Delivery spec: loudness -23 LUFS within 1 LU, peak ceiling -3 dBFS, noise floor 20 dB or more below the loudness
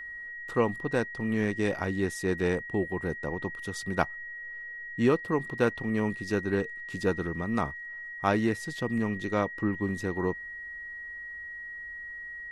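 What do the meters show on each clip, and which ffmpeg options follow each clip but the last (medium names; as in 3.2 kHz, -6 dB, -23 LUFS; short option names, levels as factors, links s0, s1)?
steady tone 1.9 kHz; tone level -38 dBFS; loudness -31.0 LUFS; peak level -7.5 dBFS; loudness target -23.0 LUFS
-> -af "bandreject=f=1900:w=30"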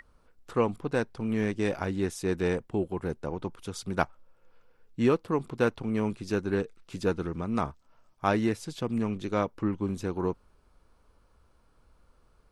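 steady tone not found; loudness -30.5 LUFS; peak level -8.0 dBFS; loudness target -23.0 LUFS
-> -af "volume=2.37,alimiter=limit=0.708:level=0:latency=1"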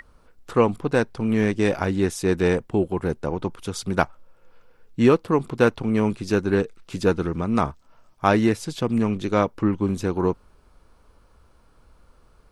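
loudness -23.0 LUFS; peak level -3.0 dBFS; noise floor -57 dBFS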